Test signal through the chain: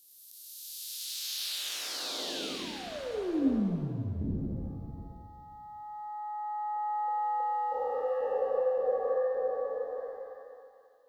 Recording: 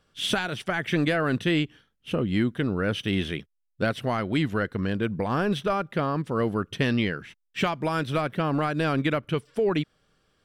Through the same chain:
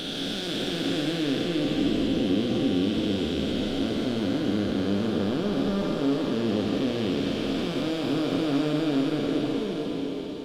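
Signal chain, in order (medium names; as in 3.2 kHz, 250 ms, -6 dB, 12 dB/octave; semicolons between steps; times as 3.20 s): spectral blur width 1310 ms; peaking EQ 150 Hz -9 dB 1.9 oct; in parallel at +2 dB: compression, threshold -43 dBFS; on the sum: graphic EQ 125/250/1000/2000/4000/8000 Hz -3/+9/-11/-9/+8/-6 dB; on a send: thinning echo 537 ms, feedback 16%, high-pass 180 Hz, level -15.5 dB; on the sum: pitch-shifted reverb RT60 1 s, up +7 st, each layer -8 dB, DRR 2.5 dB; trim +2.5 dB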